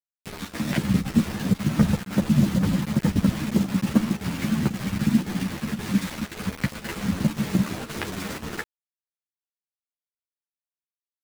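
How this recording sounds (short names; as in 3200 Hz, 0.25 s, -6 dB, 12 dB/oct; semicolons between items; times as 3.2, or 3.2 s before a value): a quantiser's noise floor 6-bit, dither none; chopped level 1.9 Hz, depth 65%, duty 90%; a shimmering, thickened sound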